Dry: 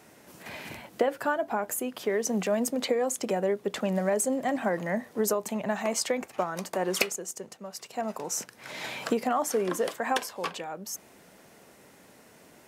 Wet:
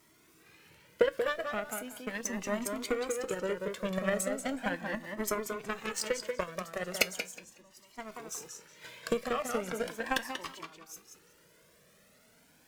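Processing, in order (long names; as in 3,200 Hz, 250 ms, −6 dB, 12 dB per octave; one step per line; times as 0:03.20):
converter with a step at zero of −32 dBFS
harmonic generator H 7 −18 dB, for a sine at −8.5 dBFS
parametric band 770 Hz −8.5 dB 0.49 octaves
noise gate −48 dBFS, range −8 dB
tuned comb filter 160 Hz, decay 0.19 s, harmonics all, mix 50%
tape delay 185 ms, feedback 23%, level −3 dB, low-pass 5,500 Hz
flanger whose copies keep moving one way rising 0.38 Hz
level +8 dB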